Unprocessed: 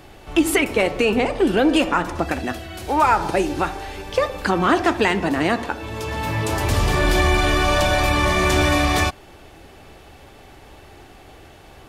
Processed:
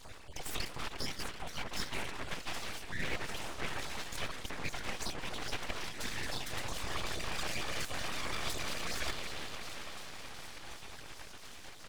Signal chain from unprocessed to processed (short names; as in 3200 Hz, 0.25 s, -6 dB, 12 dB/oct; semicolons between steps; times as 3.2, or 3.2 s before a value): random spectral dropouts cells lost 35%; limiter -13 dBFS, peak gain reduction 8 dB; whisperiser; on a send: band-limited delay 0.356 s, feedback 63%, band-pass 1200 Hz, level -15 dB; on the sum: downsampling 22050 Hz; reverse; compressor 5:1, threshold -33 dBFS, peak gain reduction 17 dB; reverse; graphic EQ 125/250/500 Hz -12/-9/-5 dB; thin delay 0.738 s, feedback 72%, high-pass 2700 Hz, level -10.5 dB; full-wave rectifier; record warp 78 rpm, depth 100 cents; gain +2.5 dB